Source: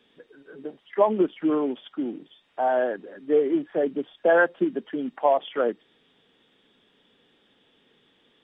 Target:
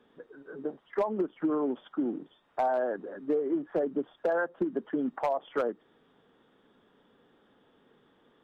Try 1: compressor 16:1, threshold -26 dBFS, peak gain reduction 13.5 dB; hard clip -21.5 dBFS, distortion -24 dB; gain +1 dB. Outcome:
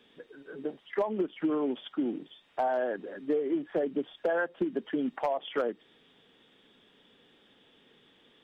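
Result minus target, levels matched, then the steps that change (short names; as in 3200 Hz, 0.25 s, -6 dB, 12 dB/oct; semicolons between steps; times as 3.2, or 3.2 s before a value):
4000 Hz band +10.0 dB
add after compressor: resonant high shelf 1800 Hz -9.5 dB, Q 1.5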